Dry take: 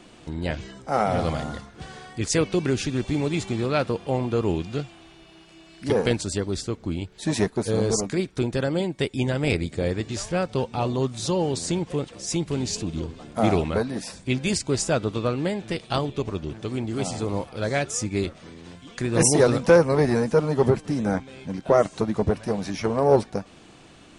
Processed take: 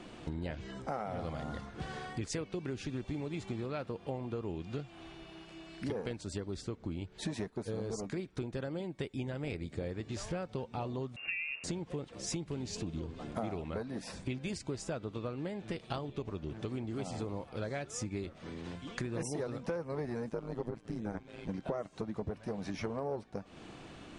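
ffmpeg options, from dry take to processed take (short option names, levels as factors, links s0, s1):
-filter_complex "[0:a]asettb=1/sr,asplit=3[s0][s1][s2];[s0]atrim=end=11.164[s3];[s1]atrim=start=11.16:end=11.64,asetpts=PTS-STARTPTS,afade=t=in:d=0.004:c=qsin,afade=t=out:st=0.476:d=0.004:c=qsin,lowpass=f=2500:t=q:w=0.5098,lowpass=f=2500:t=q:w=0.6013,lowpass=f=2500:t=q:w=0.9,lowpass=f=2500:t=q:w=2.563,afreqshift=-2900[s4];[s2]atrim=start=11.636[s5];[s3][s4]acrossfade=d=0.004:c1=hsin:c2=qsin[s6];[s6][s5]acrossfade=d=0.004:c1=qsin:c2=hsin,asettb=1/sr,asplit=3[s7][s8][s9];[s7]atrim=end=20.294[s10];[s8]atrim=start=20.29:end=21.49,asetpts=PTS-STARTPTS,afade=t=in:d=0.004:c=qsin,afade=t=out:st=1.196:d=0.004:c=qsin,tremolo=f=110:d=0.857[s11];[s9]atrim=start=21.486[s12];[s10][s11]acrossfade=d=0.004:c1=hsin:c2=qsin[s13];[s13][s12]acrossfade=d=0.004:c1=qsin:c2=hsin,highshelf=f=4700:g=-9.5,acompressor=threshold=0.0178:ratio=8"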